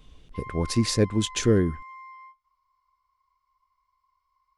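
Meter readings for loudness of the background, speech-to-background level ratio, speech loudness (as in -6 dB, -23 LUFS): -43.0 LUFS, 18.5 dB, -24.5 LUFS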